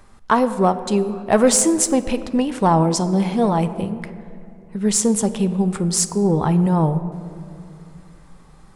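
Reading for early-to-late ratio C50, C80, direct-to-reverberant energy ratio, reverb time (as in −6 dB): 12.5 dB, 13.5 dB, 11.0 dB, 2.6 s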